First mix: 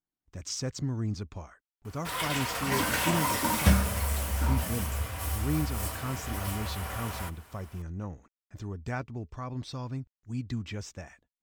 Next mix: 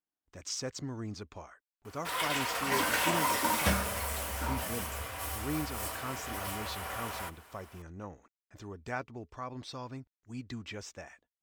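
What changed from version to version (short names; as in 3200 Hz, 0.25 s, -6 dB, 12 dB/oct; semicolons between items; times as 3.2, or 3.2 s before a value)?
master: add tone controls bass -11 dB, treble -2 dB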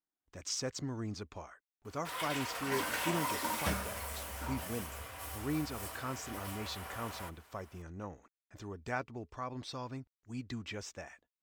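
background -6.5 dB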